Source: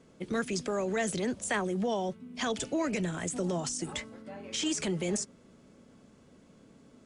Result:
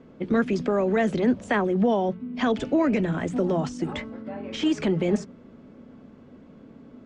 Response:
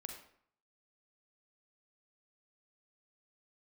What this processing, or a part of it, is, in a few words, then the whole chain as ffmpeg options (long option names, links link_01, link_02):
phone in a pocket: -af "lowpass=3700,equalizer=frequency=250:width_type=o:width=0.43:gain=4,highshelf=frequency=2300:gain=-9,bandreject=frequency=60:width_type=h:width=6,bandreject=frequency=120:width_type=h:width=6,bandreject=frequency=180:width_type=h:width=6,volume=8.5dB"